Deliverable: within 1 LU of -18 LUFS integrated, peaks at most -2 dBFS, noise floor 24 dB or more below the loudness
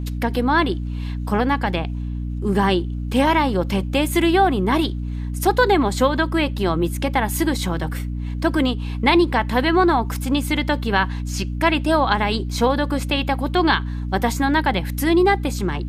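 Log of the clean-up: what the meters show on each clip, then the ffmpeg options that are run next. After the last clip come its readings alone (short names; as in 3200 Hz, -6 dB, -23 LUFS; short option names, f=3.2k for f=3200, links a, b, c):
hum 60 Hz; harmonics up to 300 Hz; hum level -23 dBFS; loudness -20.0 LUFS; peak -3.0 dBFS; loudness target -18.0 LUFS
-> -af "bandreject=f=60:t=h:w=4,bandreject=f=120:t=h:w=4,bandreject=f=180:t=h:w=4,bandreject=f=240:t=h:w=4,bandreject=f=300:t=h:w=4"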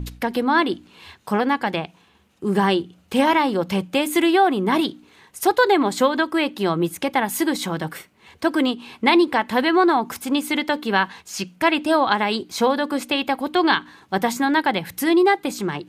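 hum none; loudness -20.5 LUFS; peak -3.0 dBFS; loudness target -18.0 LUFS
-> -af "volume=2.5dB,alimiter=limit=-2dB:level=0:latency=1"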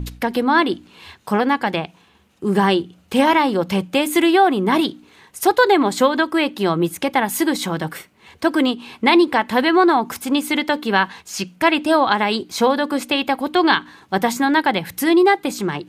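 loudness -18.0 LUFS; peak -2.0 dBFS; noise floor -54 dBFS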